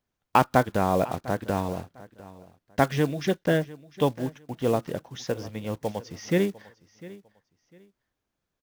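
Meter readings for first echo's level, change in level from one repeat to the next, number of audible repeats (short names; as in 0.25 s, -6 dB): -19.5 dB, -12.0 dB, 2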